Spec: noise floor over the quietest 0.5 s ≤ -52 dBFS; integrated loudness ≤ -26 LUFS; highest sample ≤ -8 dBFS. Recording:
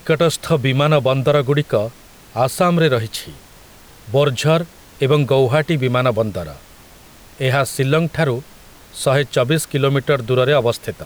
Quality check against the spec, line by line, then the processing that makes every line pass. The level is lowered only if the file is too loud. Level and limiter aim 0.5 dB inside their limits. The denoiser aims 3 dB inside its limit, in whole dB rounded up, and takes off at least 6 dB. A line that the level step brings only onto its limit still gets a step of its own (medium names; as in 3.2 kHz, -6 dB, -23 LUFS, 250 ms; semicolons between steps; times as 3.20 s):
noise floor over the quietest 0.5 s -43 dBFS: fail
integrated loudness -17.5 LUFS: fail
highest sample -4.5 dBFS: fail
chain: noise reduction 6 dB, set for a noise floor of -43 dBFS; trim -9 dB